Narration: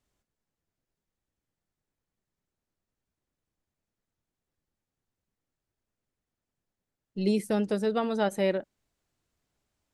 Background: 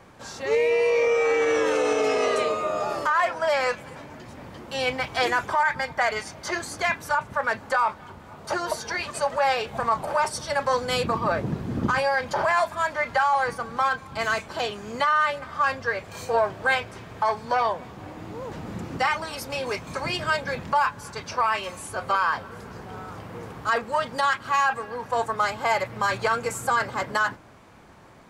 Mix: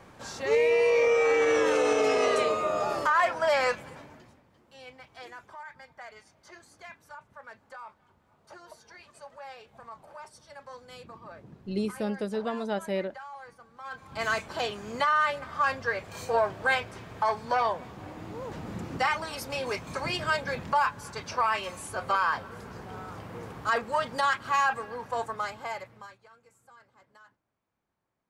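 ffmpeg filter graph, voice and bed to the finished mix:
ffmpeg -i stem1.wav -i stem2.wav -filter_complex "[0:a]adelay=4500,volume=-4dB[link_01];[1:a]volume=17.5dB,afade=type=out:start_time=3.67:duration=0.75:silence=0.0944061,afade=type=in:start_time=13.83:duration=0.46:silence=0.112202,afade=type=out:start_time=24.68:duration=1.49:silence=0.0316228[link_02];[link_01][link_02]amix=inputs=2:normalize=0" out.wav

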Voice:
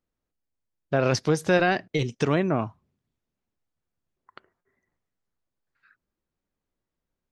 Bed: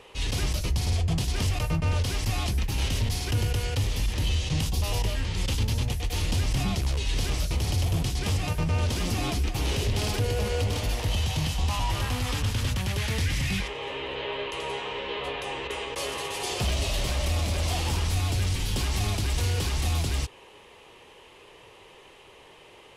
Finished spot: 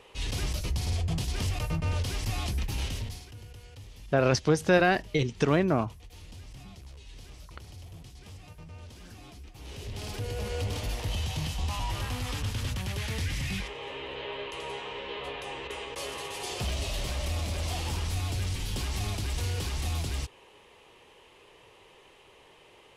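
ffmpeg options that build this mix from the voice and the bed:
ffmpeg -i stem1.wav -i stem2.wav -filter_complex "[0:a]adelay=3200,volume=-1dB[link_01];[1:a]volume=11.5dB,afade=type=out:start_time=2.74:duration=0.56:silence=0.149624,afade=type=in:start_time=9.55:duration=1.11:silence=0.16788[link_02];[link_01][link_02]amix=inputs=2:normalize=0" out.wav

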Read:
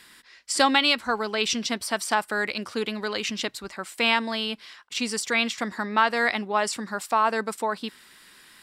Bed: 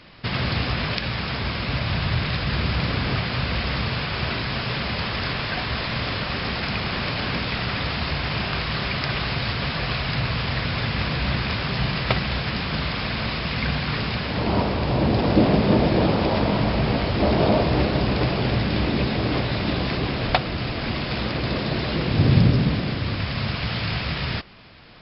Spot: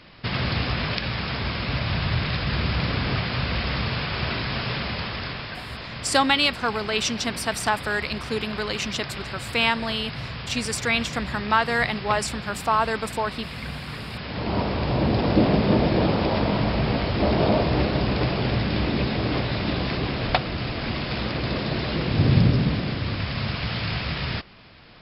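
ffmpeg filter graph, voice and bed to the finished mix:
ffmpeg -i stem1.wav -i stem2.wav -filter_complex "[0:a]adelay=5550,volume=0.5dB[link_01];[1:a]volume=6.5dB,afade=type=out:start_time=4.67:duration=0.93:silence=0.398107,afade=type=in:start_time=14.08:duration=0.71:silence=0.421697[link_02];[link_01][link_02]amix=inputs=2:normalize=0" out.wav

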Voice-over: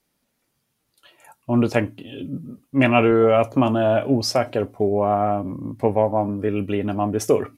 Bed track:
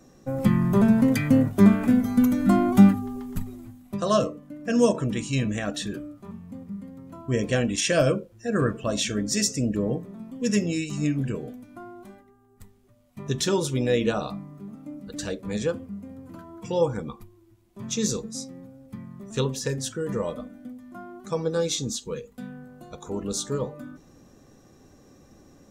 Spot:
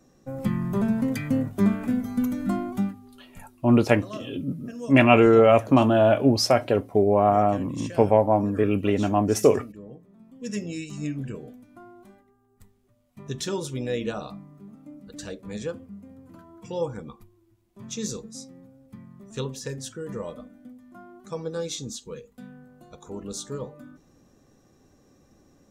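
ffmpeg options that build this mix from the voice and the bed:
ffmpeg -i stem1.wav -i stem2.wav -filter_complex "[0:a]adelay=2150,volume=0.5dB[link_01];[1:a]volume=6dB,afade=type=out:start_time=2.41:duration=0.55:silence=0.266073,afade=type=in:start_time=9.98:duration=0.85:silence=0.266073[link_02];[link_01][link_02]amix=inputs=2:normalize=0" out.wav

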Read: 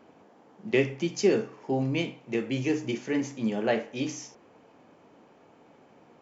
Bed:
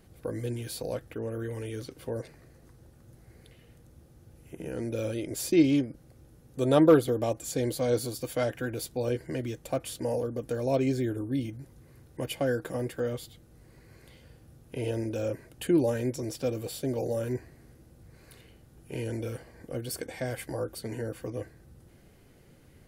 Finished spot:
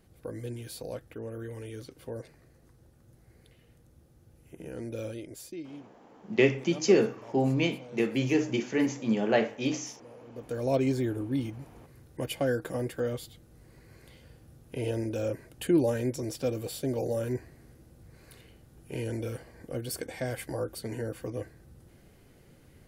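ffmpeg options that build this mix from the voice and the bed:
ffmpeg -i stem1.wav -i stem2.wav -filter_complex "[0:a]adelay=5650,volume=1.5dB[link_01];[1:a]volume=16.5dB,afade=type=out:start_time=5.02:duration=0.59:silence=0.149624,afade=type=in:start_time=10.25:duration=0.41:silence=0.0891251[link_02];[link_01][link_02]amix=inputs=2:normalize=0" out.wav

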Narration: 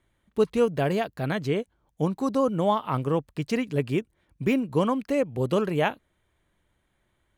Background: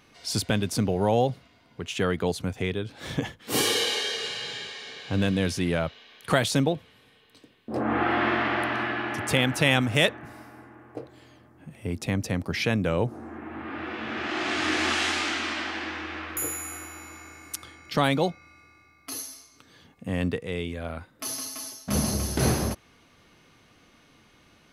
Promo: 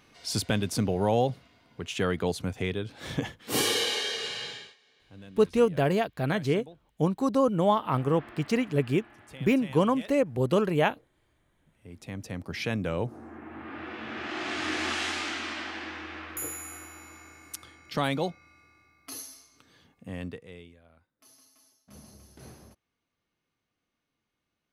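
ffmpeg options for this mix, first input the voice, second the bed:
ffmpeg -i stem1.wav -i stem2.wav -filter_complex "[0:a]adelay=5000,volume=0dB[link_01];[1:a]volume=16.5dB,afade=type=out:start_time=4.43:duration=0.33:silence=0.0841395,afade=type=in:start_time=11.71:duration=1.03:silence=0.11885,afade=type=out:start_time=19.66:duration=1.16:silence=0.0944061[link_02];[link_01][link_02]amix=inputs=2:normalize=0" out.wav

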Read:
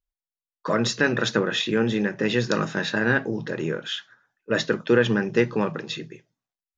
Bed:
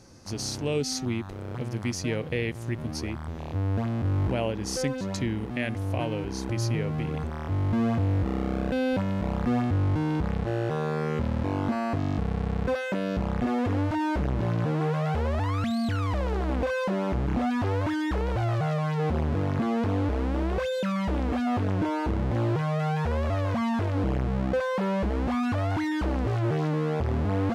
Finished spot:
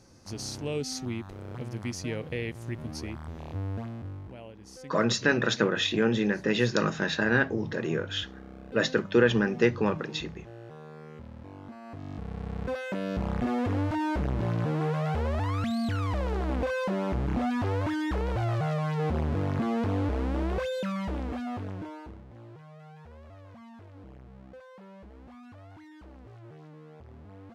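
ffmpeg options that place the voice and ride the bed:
ffmpeg -i stem1.wav -i stem2.wav -filter_complex "[0:a]adelay=4250,volume=-2.5dB[link_01];[1:a]volume=11dB,afade=type=out:start_time=3.5:duration=0.73:silence=0.223872,afade=type=in:start_time=11.81:duration=1.49:silence=0.16788,afade=type=out:start_time=20.51:duration=1.73:silence=0.0944061[link_02];[link_01][link_02]amix=inputs=2:normalize=0" out.wav

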